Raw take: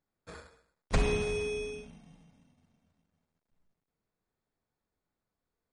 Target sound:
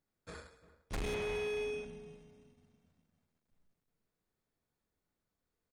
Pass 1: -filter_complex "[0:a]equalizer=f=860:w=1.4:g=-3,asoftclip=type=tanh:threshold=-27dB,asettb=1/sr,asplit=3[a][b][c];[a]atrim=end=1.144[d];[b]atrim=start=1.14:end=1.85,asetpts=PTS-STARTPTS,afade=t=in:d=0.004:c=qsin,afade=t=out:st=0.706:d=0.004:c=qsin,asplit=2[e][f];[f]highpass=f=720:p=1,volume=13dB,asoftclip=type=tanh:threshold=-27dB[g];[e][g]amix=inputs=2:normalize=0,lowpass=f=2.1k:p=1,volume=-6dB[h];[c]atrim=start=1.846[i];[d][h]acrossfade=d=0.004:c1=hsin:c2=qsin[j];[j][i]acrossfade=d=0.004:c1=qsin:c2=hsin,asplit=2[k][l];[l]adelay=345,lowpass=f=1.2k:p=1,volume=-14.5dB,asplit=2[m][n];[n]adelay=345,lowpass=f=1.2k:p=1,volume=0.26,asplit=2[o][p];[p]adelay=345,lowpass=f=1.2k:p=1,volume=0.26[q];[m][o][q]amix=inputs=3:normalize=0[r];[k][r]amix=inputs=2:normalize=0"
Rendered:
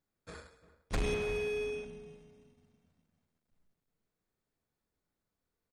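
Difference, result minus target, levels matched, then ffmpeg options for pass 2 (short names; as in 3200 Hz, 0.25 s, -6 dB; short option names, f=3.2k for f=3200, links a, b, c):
soft clip: distortion -5 dB
-filter_complex "[0:a]equalizer=f=860:w=1.4:g=-3,asoftclip=type=tanh:threshold=-34.5dB,asettb=1/sr,asplit=3[a][b][c];[a]atrim=end=1.144[d];[b]atrim=start=1.14:end=1.85,asetpts=PTS-STARTPTS,afade=t=in:d=0.004:c=qsin,afade=t=out:st=0.706:d=0.004:c=qsin,asplit=2[e][f];[f]highpass=f=720:p=1,volume=13dB,asoftclip=type=tanh:threshold=-27dB[g];[e][g]amix=inputs=2:normalize=0,lowpass=f=2.1k:p=1,volume=-6dB[h];[c]atrim=start=1.846[i];[d][h]acrossfade=d=0.004:c1=hsin:c2=qsin[j];[j][i]acrossfade=d=0.004:c1=qsin:c2=hsin,asplit=2[k][l];[l]adelay=345,lowpass=f=1.2k:p=1,volume=-14.5dB,asplit=2[m][n];[n]adelay=345,lowpass=f=1.2k:p=1,volume=0.26,asplit=2[o][p];[p]adelay=345,lowpass=f=1.2k:p=1,volume=0.26[q];[m][o][q]amix=inputs=3:normalize=0[r];[k][r]amix=inputs=2:normalize=0"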